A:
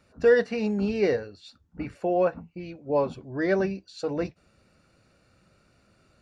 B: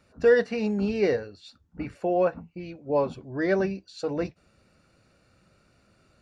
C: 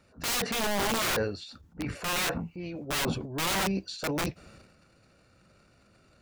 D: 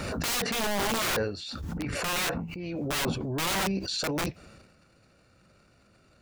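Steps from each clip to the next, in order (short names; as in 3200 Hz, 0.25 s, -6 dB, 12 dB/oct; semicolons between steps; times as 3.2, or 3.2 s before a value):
nothing audible
wrapped overs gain 23.5 dB; transient shaper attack -3 dB, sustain +11 dB
backwards sustainer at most 22 dB/s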